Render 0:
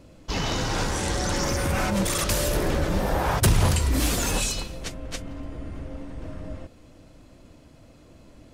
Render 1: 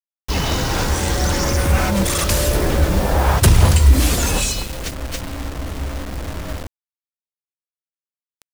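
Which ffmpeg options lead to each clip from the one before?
ffmpeg -i in.wav -af "equalizer=frequency=70:width_type=o:width=0.31:gain=11.5,acrusher=bits=5:mix=0:aa=0.000001,volume=5.5dB" out.wav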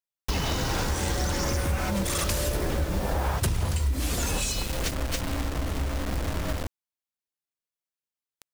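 ffmpeg -i in.wav -af "acompressor=threshold=-24dB:ratio=6" out.wav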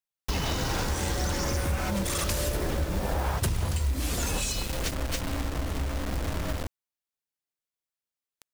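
ffmpeg -i in.wav -af "acrusher=bits=5:mode=log:mix=0:aa=0.000001,volume=-1.5dB" out.wav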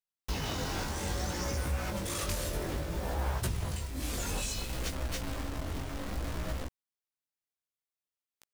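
ffmpeg -i in.wav -af "flanger=delay=15.5:depth=7.3:speed=0.61,volume=-2.5dB" out.wav

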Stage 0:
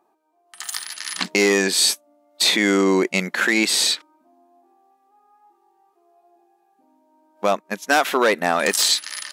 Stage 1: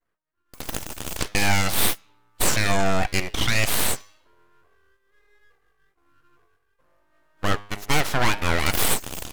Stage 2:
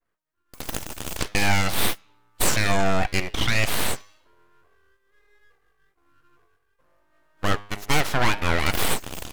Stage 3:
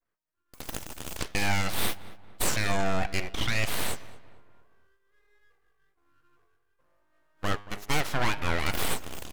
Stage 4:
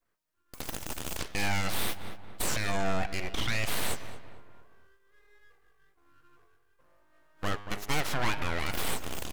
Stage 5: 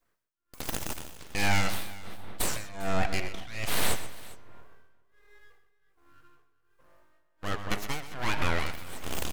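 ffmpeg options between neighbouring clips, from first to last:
ffmpeg -i in.wav -af "agate=range=-33dB:threshold=-57dB:ratio=3:detection=peak,bandreject=frequency=102.4:width_type=h:width=4,bandreject=frequency=204.8:width_type=h:width=4,bandreject=frequency=307.2:width_type=h:width=4,bandreject=frequency=409.6:width_type=h:width=4,bandreject=frequency=512:width_type=h:width=4,bandreject=frequency=614.4:width_type=h:width=4,bandreject=frequency=716.8:width_type=h:width=4,bandreject=frequency=819.2:width_type=h:width=4,bandreject=frequency=921.6:width_type=h:width=4,bandreject=frequency=1024:width_type=h:width=4,bandreject=frequency=1126.4:width_type=h:width=4,bandreject=frequency=1228.8:width_type=h:width=4,bandreject=frequency=1331.2:width_type=h:width=4,bandreject=frequency=1433.6:width_type=h:width=4,bandreject=frequency=1536:width_type=h:width=4,bandreject=frequency=1638.4:width_type=h:width=4,bandreject=frequency=1740.8:width_type=h:width=4,bandreject=frequency=1843.2:width_type=h:width=4,bandreject=frequency=1945.6:width_type=h:width=4,bandreject=frequency=2048:width_type=h:width=4,bandreject=frequency=2150.4:width_type=h:width=4,bandreject=frequency=2252.8:width_type=h:width=4,bandreject=frequency=2355.2:width_type=h:width=4,bandreject=frequency=2457.6:width_type=h:width=4,bandreject=frequency=2560:width_type=h:width=4,bandreject=frequency=2662.4:width_type=h:width=4,bandreject=frequency=2764.8:width_type=h:width=4,bandreject=frequency=2867.2:width_type=h:width=4,bandreject=frequency=2969.6:width_type=h:width=4,bandreject=frequency=3072:width_type=h:width=4,bandreject=frequency=3174.4:width_type=h:width=4,bandreject=frequency=3276.8:width_type=h:width=4,bandreject=frequency=3379.2:width_type=h:width=4,bandreject=frequency=3481.6:width_type=h:width=4,bandreject=frequency=3584:width_type=h:width=4,aeval=exprs='abs(val(0))':channel_layout=same" out.wav
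ffmpeg -i in.wav -af "adynamicequalizer=threshold=0.0112:dfrequency=4900:dqfactor=0.7:tfrequency=4900:tqfactor=0.7:attack=5:release=100:ratio=0.375:range=3:mode=cutabove:tftype=highshelf" out.wav
ffmpeg -i in.wav -filter_complex "[0:a]asplit=2[link_01][link_02];[link_02]adelay=228,lowpass=frequency=2100:poles=1,volume=-16.5dB,asplit=2[link_03][link_04];[link_04]adelay=228,lowpass=frequency=2100:poles=1,volume=0.45,asplit=2[link_05][link_06];[link_06]adelay=228,lowpass=frequency=2100:poles=1,volume=0.45,asplit=2[link_07][link_08];[link_08]adelay=228,lowpass=frequency=2100:poles=1,volume=0.45[link_09];[link_01][link_03][link_05][link_07][link_09]amix=inputs=5:normalize=0,volume=-6dB" out.wav
ffmpeg -i in.wav -af "alimiter=limit=-22.5dB:level=0:latency=1:release=139,volume=5dB" out.wav
ffmpeg -i in.wav -af "tremolo=f=1.3:d=0.92,aecho=1:1:127|402:0.211|0.106,volume=4.5dB" out.wav

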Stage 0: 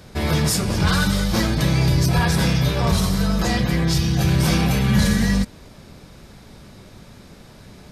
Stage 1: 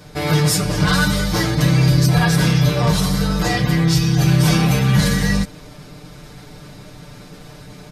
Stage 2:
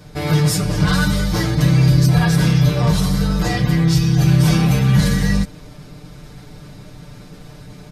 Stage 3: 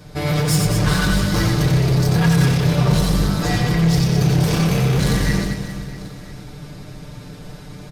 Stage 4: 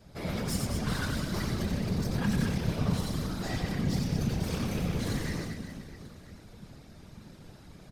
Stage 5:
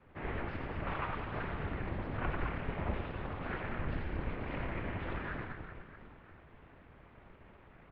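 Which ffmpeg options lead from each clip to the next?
ffmpeg -i in.wav -af "aecho=1:1:6.7:0.92,areverse,acompressor=mode=upward:threshold=-32dB:ratio=2.5,areverse" out.wav
ffmpeg -i in.wav -af "lowshelf=frequency=240:gain=6,volume=-3dB" out.wav
ffmpeg -i in.wav -filter_complex "[0:a]volume=15.5dB,asoftclip=hard,volume=-15.5dB,asplit=2[link_01][link_02];[link_02]aecho=0:1:90|216|392.4|639.4|985.1:0.631|0.398|0.251|0.158|0.1[link_03];[link_01][link_03]amix=inputs=2:normalize=0" out.wav
ffmpeg -i in.wav -af "afftfilt=real='hypot(re,im)*cos(2*PI*random(0))':imag='hypot(re,im)*sin(2*PI*random(1))':win_size=512:overlap=0.75,volume=-8dB" out.wav
ffmpeg -i in.wav -af "aeval=exprs='abs(val(0))':channel_layout=same,bandreject=frequency=83.77:width_type=h:width=4,bandreject=frequency=167.54:width_type=h:width=4,bandreject=frequency=251.31:width_type=h:width=4,bandreject=frequency=335.08:width_type=h:width=4,bandreject=frequency=418.85:width_type=h:width=4,bandreject=frequency=502.62:width_type=h:width=4,bandreject=frequency=586.39:width_type=h:width=4,bandreject=frequency=670.16:width_type=h:width=4,bandreject=frequency=753.93:width_type=h:width=4,bandreject=frequency=837.7:width_type=h:width=4,bandreject=frequency=921.47:width_type=h:width=4,bandreject=frequency=1005.24:width_type=h:width=4,bandreject=frequency=1089.01:width_type=h:width=4,bandreject=frequency=1172.78:width_type=h:width=4,bandreject=frequency=1256.55:width_type=h:width=4,bandreject=frequency=1340.32:width_type=h:width=4,bandreject=frequency=1424.09:width_type=h:width=4,bandreject=frequency=1507.86:width_type=h:width=4,bandreject=frequency=1591.63:width_type=h:width=4,bandreject=frequency=1675.4:width_type=h:width=4,bandreject=frequency=1759.17:width_type=h:width=4,bandreject=frequency=1842.94:width_type=h:width=4,bandreject=frequency=1926.71:width_type=h:width=4,bandreject=frequency=2010.48:width_type=h:width=4,bandreject=frequency=2094.25:width_type=h:width=4,bandreject=frequency=2178.02:width_type=h:width=4,bandreject=frequency=2261.79:width_type=h:width=4,bandreject=frequency=2345.56:width_type=h:width=4,bandreject=frequency=2429.33:width_type=h:width=4,bandreject=frequency=2513.1:width_type=h:width=4,bandreject=frequency=2596.87:width_type=h:width=4,bandreject=frequency=2680.64:width_type=h:width=4,highpass=frequency=310:width_type=q:width=0.5412,highpass=frequency=310:width_type=q:width=1.307,lowpass=frequency=2800:width_type=q:width=0.5176,lowpass=frequency=2800:width_type=q:width=0.7071,lowpass=frequency=2800:width_type=q:width=1.932,afreqshift=-370,volume=2.5dB" out.wav

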